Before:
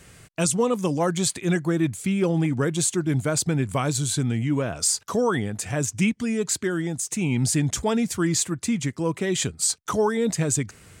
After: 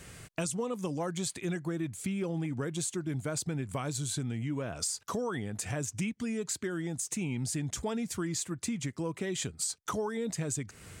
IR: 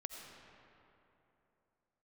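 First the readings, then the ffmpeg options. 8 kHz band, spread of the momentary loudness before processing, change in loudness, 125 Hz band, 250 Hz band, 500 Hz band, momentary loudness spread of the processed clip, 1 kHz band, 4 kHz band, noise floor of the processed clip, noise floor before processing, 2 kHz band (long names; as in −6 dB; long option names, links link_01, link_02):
−10.0 dB, 4 LU, −10.5 dB, −10.5 dB, −10.5 dB, −11.0 dB, 2 LU, −10.5 dB, −10.0 dB, −61 dBFS, −53 dBFS, −10.5 dB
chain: -af "acompressor=threshold=-33dB:ratio=4"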